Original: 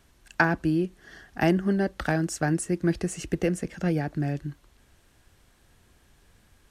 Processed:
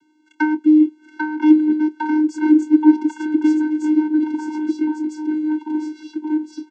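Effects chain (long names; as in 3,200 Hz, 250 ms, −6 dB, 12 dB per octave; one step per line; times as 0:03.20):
double-tracking delay 26 ms −14 dB
delay with pitch and tempo change per echo 718 ms, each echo −3 semitones, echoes 3
channel vocoder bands 16, square 307 Hz
level +8.5 dB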